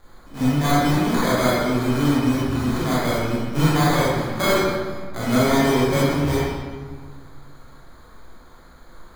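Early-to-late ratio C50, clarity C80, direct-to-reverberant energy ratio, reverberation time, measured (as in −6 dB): −4.0 dB, −0.5 dB, −9.5 dB, 1.6 s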